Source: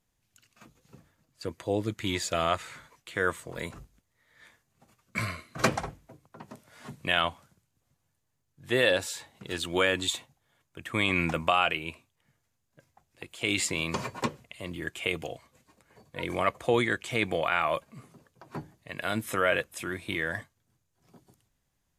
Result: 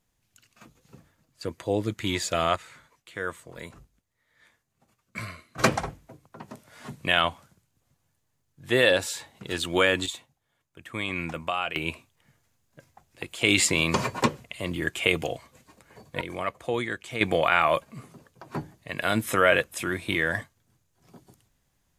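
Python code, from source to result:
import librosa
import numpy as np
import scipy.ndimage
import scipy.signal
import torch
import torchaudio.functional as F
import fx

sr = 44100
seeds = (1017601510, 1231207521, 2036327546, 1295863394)

y = fx.gain(x, sr, db=fx.steps((0.0, 2.5), (2.56, -4.5), (5.58, 3.5), (10.06, -4.5), (11.76, 7.0), (16.21, -3.5), (17.21, 5.5)))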